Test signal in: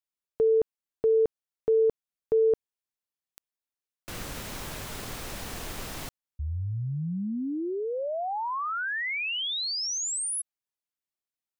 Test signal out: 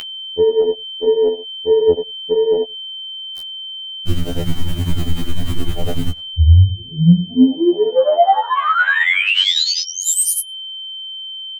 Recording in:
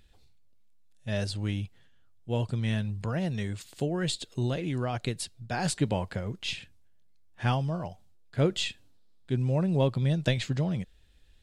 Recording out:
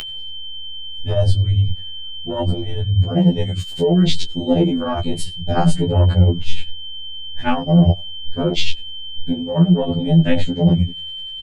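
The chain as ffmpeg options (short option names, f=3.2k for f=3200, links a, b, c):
-filter_complex "[0:a]asplit=2[a][b];[b]adelay=87,lowpass=f=3.2k:p=1,volume=-18.5dB,asplit=2[c][d];[d]adelay=87,lowpass=f=3.2k:p=1,volume=0.22[e];[a][c][e]amix=inputs=3:normalize=0,adynamicequalizer=threshold=0.00224:dfrequency=5300:dqfactor=3.3:tfrequency=5300:tqfactor=3.3:attack=5:release=100:ratio=0.375:range=3:mode=cutabove:tftype=bell,flanger=delay=18:depth=6.9:speed=0.69,tremolo=f=10:d=0.76,afwtdn=0.0112,lowshelf=f=89:g=9.5,areverse,acompressor=threshold=-40dB:ratio=12:attack=27:release=95:knee=6:detection=peak,areverse,aeval=exprs='val(0)+0.000447*sin(2*PI*3100*n/s)':c=same,acompressor=mode=upward:threshold=-59dB:ratio=2.5:attack=14:release=91:knee=2.83:detection=peak,bandreject=f=1k:w=24,alimiter=level_in=34dB:limit=-1dB:release=50:level=0:latency=1,afftfilt=real='re*2*eq(mod(b,4),0)':imag='im*2*eq(mod(b,4),0)':win_size=2048:overlap=0.75,volume=-3.5dB"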